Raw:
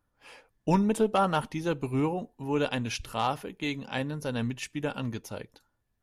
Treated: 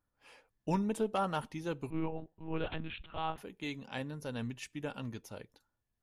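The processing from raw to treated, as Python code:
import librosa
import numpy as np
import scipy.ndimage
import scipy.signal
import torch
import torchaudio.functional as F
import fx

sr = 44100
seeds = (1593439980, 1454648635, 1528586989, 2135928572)

y = fx.lpc_monotone(x, sr, seeds[0], pitch_hz=160.0, order=10, at=(1.9, 3.38))
y = y * librosa.db_to_amplitude(-8.0)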